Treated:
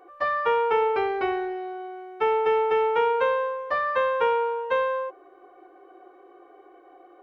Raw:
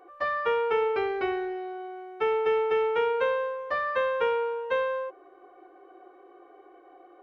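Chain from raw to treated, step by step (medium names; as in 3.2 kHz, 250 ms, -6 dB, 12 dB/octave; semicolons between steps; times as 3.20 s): dynamic bell 900 Hz, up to +6 dB, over -43 dBFS, Q 2.3; trim +1.5 dB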